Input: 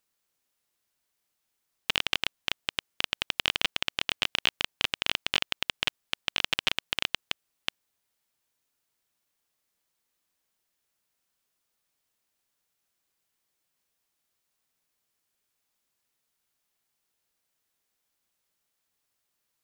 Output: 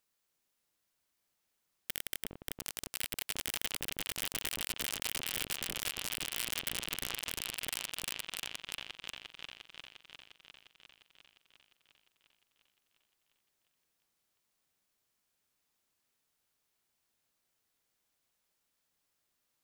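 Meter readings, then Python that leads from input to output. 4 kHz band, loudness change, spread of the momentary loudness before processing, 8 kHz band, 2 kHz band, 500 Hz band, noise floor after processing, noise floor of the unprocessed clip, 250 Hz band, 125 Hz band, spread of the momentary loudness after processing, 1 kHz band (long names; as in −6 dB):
−10.0 dB, −7.5 dB, 7 LU, +5.0 dB, −9.5 dB, −6.5 dB, −82 dBFS, −80 dBFS, −4.0 dB, −3.0 dB, 14 LU, −9.0 dB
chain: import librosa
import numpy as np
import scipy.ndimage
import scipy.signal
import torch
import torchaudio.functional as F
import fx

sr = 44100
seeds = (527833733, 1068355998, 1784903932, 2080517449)

y = fx.echo_opening(x, sr, ms=352, hz=400, octaves=2, feedback_pct=70, wet_db=-3)
y = (np.mod(10.0 ** (19.5 / 20.0) * y + 1.0, 2.0) - 1.0) / 10.0 ** (19.5 / 20.0)
y = F.gain(torch.from_numpy(y), -2.0).numpy()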